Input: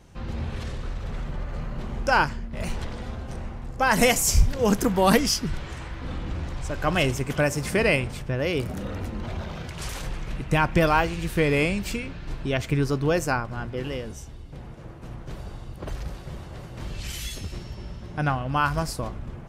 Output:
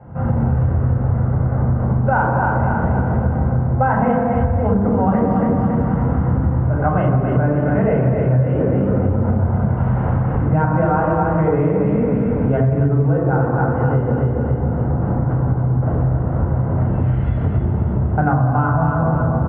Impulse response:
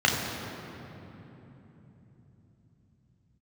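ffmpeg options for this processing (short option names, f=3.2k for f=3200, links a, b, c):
-filter_complex "[0:a]lowpass=f=1.2k:w=0.5412,lowpass=f=1.2k:w=1.3066,aecho=1:1:277|554|831|1108|1385:0.562|0.231|0.0945|0.0388|0.0159,dynaudnorm=f=210:g=3:m=11.5dB[a];[1:a]atrim=start_sample=2205,afade=t=out:st=0.32:d=0.01,atrim=end_sample=14553[b];[a][b]afir=irnorm=-1:irlink=0,acompressor=threshold=-17dB:ratio=6,volume=1.5dB"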